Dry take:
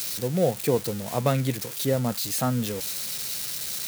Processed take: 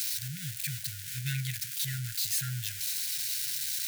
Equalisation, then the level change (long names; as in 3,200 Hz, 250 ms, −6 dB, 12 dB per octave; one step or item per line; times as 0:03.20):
linear-phase brick-wall band-stop 160–1,400 Hz
low-shelf EQ 130 Hz −9.5 dB
−1.5 dB